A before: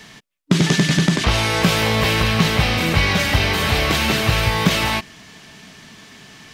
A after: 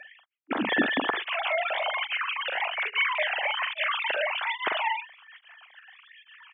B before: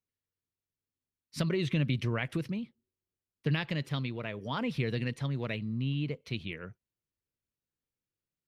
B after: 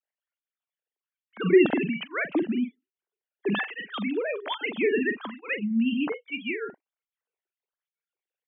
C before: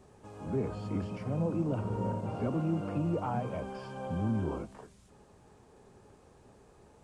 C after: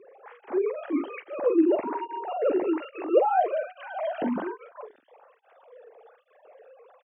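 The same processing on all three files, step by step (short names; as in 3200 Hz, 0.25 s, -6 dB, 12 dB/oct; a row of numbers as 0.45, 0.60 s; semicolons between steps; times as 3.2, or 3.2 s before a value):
sine-wave speech; doubler 44 ms -8.5 dB; tape flanging out of phase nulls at 1.2 Hz, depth 1 ms; match loudness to -27 LUFS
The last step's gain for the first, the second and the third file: -8.0, +10.5, +10.0 dB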